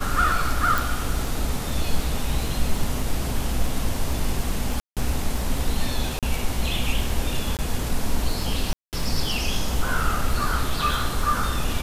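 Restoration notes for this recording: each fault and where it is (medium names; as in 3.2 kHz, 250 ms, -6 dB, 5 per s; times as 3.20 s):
crackle 20 per s -27 dBFS
0.78 s: pop
4.80–4.97 s: dropout 167 ms
6.19–6.23 s: dropout 37 ms
7.57–7.59 s: dropout 18 ms
8.73–8.93 s: dropout 198 ms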